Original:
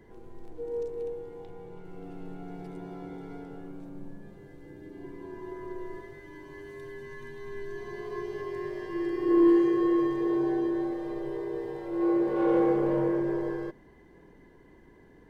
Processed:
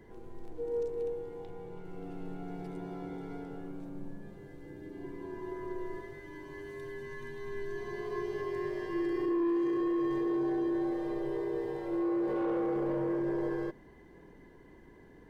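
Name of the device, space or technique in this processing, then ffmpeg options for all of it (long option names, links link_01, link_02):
soft clipper into limiter: -af "asoftclip=type=tanh:threshold=-17.5dB,alimiter=level_in=2dB:limit=-24dB:level=0:latency=1:release=21,volume=-2dB"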